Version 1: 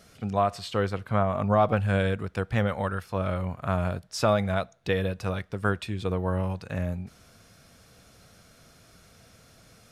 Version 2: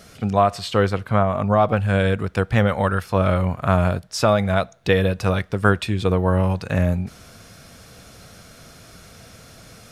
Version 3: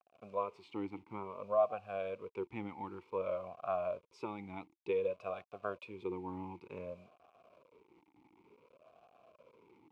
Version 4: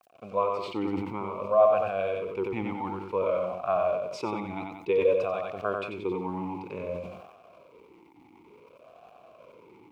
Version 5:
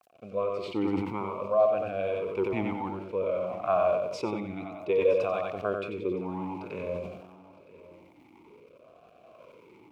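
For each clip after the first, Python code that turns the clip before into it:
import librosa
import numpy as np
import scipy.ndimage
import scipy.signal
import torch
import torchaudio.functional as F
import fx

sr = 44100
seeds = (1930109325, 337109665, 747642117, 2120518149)

y1 = fx.rider(x, sr, range_db=3, speed_s=0.5)
y1 = F.gain(torch.from_numpy(y1), 7.5).numpy()
y2 = fx.delta_hold(y1, sr, step_db=-36.5)
y2 = fx.vowel_sweep(y2, sr, vowels='a-u', hz=0.55)
y2 = F.gain(torch.from_numpy(y2), -8.0).numpy()
y3 = fx.echo_feedback(y2, sr, ms=92, feedback_pct=28, wet_db=-4)
y3 = fx.sustainer(y3, sr, db_per_s=53.0)
y3 = F.gain(torch.from_numpy(y3), 8.5).numpy()
y4 = fx.rotary(y3, sr, hz=0.7)
y4 = y4 + 10.0 ** (-19.5 / 20.0) * np.pad(y4, (int(965 * sr / 1000.0), 0))[:len(y4)]
y4 = F.gain(torch.from_numpy(y4), 2.0).numpy()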